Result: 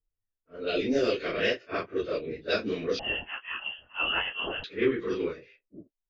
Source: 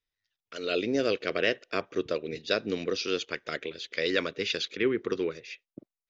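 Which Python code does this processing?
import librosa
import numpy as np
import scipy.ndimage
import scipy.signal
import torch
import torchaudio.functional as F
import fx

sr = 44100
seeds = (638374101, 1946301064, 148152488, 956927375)

y = fx.phase_scramble(x, sr, seeds[0], window_ms=100)
y = fx.peak_eq(y, sr, hz=130.0, db=-3.5, octaves=1.5)
y = fx.env_lowpass(y, sr, base_hz=540.0, full_db=-22.5)
y = fx.low_shelf(y, sr, hz=93.0, db=11.0)
y = fx.freq_invert(y, sr, carrier_hz=3200, at=(2.99, 4.64))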